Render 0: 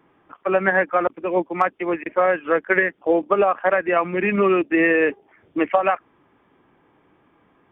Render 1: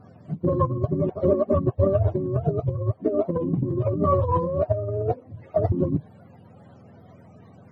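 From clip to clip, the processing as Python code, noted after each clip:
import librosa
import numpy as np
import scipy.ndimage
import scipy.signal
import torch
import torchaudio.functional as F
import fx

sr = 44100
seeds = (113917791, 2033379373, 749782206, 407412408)

y = fx.octave_mirror(x, sr, pivot_hz=450.0)
y = fx.over_compress(y, sr, threshold_db=-27.0, ratio=-1.0)
y = F.gain(torch.from_numpy(y), 4.0).numpy()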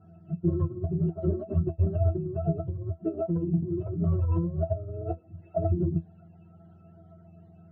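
y = fx.high_shelf(x, sr, hz=2000.0, db=10.0)
y = fx.octave_resonator(y, sr, note='E', decay_s=0.14)
y = F.gain(torch.from_numpy(y), 3.5).numpy()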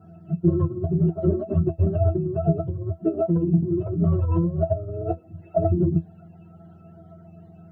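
y = scipy.signal.sosfilt(scipy.signal.butter(2, 95.0, 'highpass', fs=sr, output='sos'), x)
y = F.gain(torch.from_numpy(y), 7.0).numpy()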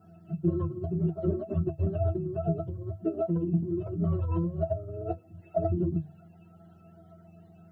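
y = fx.high_shelf(x, sr, hz=2100.0, db=10.0)
y = fx.hum_notches(y, sr, base_hz=50, count=3)
y = F.gain(torch.from_numpy(y), -7.0).numpy()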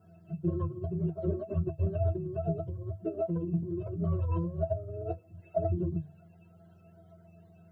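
y = x + 0.47 * np.pad(x, (int(1.9 * sr / 1000.0), 0))[:len(x)]
y = F.gain(torch.from_numpy(y), -3.0).numpy()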